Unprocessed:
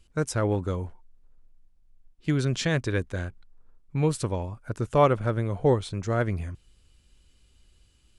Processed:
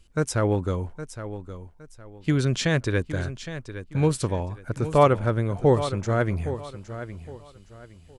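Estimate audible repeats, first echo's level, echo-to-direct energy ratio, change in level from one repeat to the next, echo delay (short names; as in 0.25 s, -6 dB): 3, -12.0 dB, -11.5 dB, -11.0 dB, 0.814 s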